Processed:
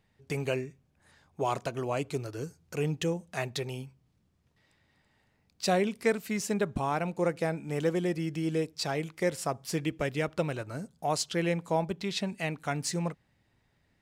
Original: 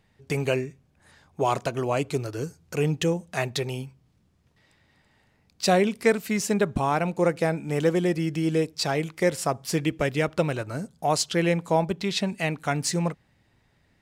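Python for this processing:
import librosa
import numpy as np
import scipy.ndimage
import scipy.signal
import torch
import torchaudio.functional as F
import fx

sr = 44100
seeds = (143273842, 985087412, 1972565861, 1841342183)

y = x * 10.0 ** (-6.0 / 20.0)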